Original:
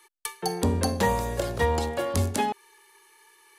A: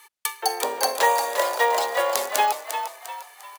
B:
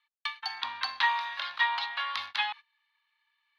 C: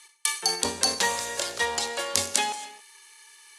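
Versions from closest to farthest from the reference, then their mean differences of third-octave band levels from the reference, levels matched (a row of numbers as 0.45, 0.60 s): C, A, B; 8.0, 10.5, 15.5 dB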